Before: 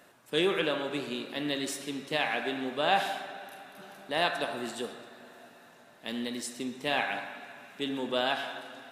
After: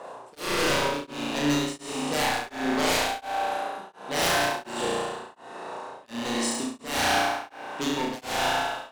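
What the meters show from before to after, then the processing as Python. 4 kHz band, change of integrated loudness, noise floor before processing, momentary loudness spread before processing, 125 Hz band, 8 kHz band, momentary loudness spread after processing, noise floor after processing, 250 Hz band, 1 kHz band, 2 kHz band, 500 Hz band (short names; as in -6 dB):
+5.0 dB, +5.0 dB, -57 dBFS, 18 LU, +8.5 dB, +12.0 dB, 14 LU, -50 dBFS, +5.5 dB, +6.5 dB, +4.5 dB, +3.0 dB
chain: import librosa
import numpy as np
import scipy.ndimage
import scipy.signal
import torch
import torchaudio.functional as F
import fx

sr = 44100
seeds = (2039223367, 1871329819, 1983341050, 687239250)

y = scipy.signal.sosfilt(scipy.signal.butter(6, 10000.0, 'lowpass', fs=sr, output='sos'), x)
y = fx.peak_eq(y, sr, hz=950.0, db=10.0, octaves=0.5)
y = fx.rider(y, sr, range_db=3, speed_s=2.0)
y = fx.dmg_noise_band(y, sr, seeds[0], low_hz=370.0, high_hz=1100.0, level_db=-48.0)
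y = 10.0 ** (-26.5 / 20.0) * (np.abs((y / 10.0 ** (-26.5 / 20.0) + 3.0) % 4.0 - 2.0) - 1.0)
y = fx.room_flutter(y, sr, wall_m=5.9, rt60_s=1.3)
y = y * np.abs(np.cos(np.pi * 1.4 * np.arange(len(y)) / sr))
y = y * 10.0 ** (4.0 / 20.0)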